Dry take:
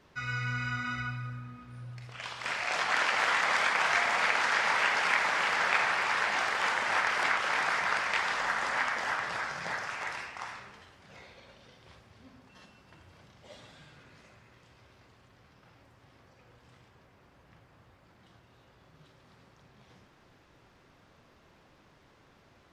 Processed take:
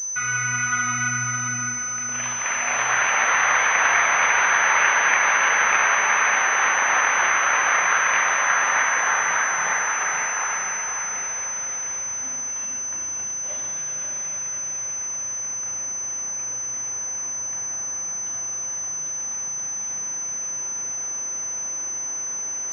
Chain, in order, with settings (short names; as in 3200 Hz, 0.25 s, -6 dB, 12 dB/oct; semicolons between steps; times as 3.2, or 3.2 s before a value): tilt +4 dB/oct; in parallel at +3 dB: compressor, threshold -40 dBFS, peak gain reduction 20 dB; on the sum: sample leveller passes 1; reverse; upward compressor, threshold -35 dBFS; reverse; air absorption 320 m; diffused feedback echo 0.514 s, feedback 51%, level -4.5 dB; spring tank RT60 1.2 s, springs 33 ms, chirp 80 ms, DRR 6 dB; pulse-width modulation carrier 6100 Hz; gain +2.5 dB